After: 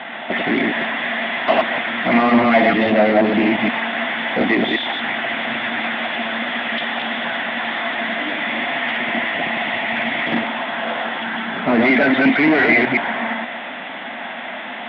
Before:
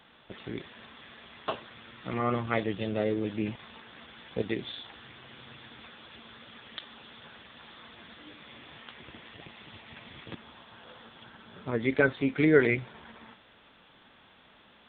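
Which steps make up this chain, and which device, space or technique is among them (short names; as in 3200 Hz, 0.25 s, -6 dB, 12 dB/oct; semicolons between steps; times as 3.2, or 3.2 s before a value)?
reverse delay 0.119 s, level -3 dB; overdrive pedal into a guitar cabinet (overdrive pedal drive 36 dB, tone 1800 Hz, clips at -8 dBFS; speaker cabinet 110–3500 Hz, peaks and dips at 120 Hz -6 dB, 240 Hz +10 dB, 450 Hz -8 dB, 690 Hz +10 dB, 1200 Hz -5 dB, 2000 Hz +8 dB); 11.18–11.63 bell 590 Hz -6.5 dB 0.45 oct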